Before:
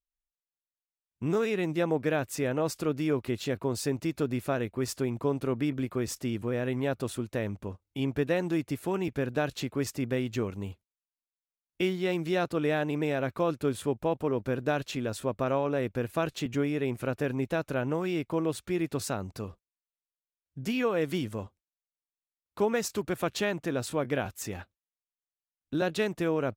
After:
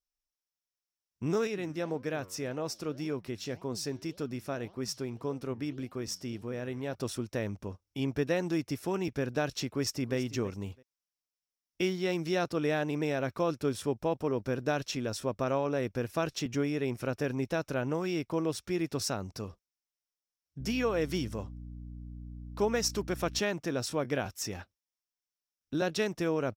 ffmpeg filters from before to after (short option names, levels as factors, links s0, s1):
-filter_complex "[0:a]asettb=1/sr,asplit=3[s0][s1][s2];[s0]atrim=end=1.474[s3];[s1]atrim=start=1.47:end=6.95,asetpts=PTS-STARTPTS,afade=t=in:d=0.004:c=qsin,afade=t=out:st=5.476:d=0.004:c=qsin,flanger=delay=3.8:depth=7.1:regen=90:speed=1.8:shape=sinusoidal[s4];[s2]atrim=start=6.946[s5];[s3][s4]acrossfade=d=0.004:c1=hsin:c2=qsin[s6];[s6][s5]acrossfade=d=0.004:c1=qsin:c2=hsin,asplit=2[s7][s8];[s8]afade=t=in:st=9.64:d=0.01,afade=t=out:st=10.16:d=0.01,aecho=0:1:330|660:0.16788|0.0335761[s9];[s7][s9]amix=inputs=2:normalize=0,asettb=1/sr,asplit=3[s10][s11][s12];[s10]atrim=end=20.604[s13];[s11]atrim=start=20.6:end=23.39,asetpts=PTS-STARTPTS,afade=t=in:d=0.004:c=qsin,afade=t=out:st=2.786:d=0.004:c=qsin,aeval=exprs='val(0)+0.01*(sin(2*PI*60*n/s)+sin(2*PI*2*60*n/s)/2+sin(2*PI*3*60*n/s)/3+sin(2*PI*4*60*n/s)/4+sin(2*PI*5*60*n/s)/5)':c=same[s14];[s12]atrim=start=23.386[s15];[s13][s14]acrossfade=d=0.004:c1=hsin:c2=qsin[s16];[s16][s15]acrossfade=d=0.004:c1=qsin:c2=hsin,equalizer=f=5500:w=4.5:g=13,volume=0.794"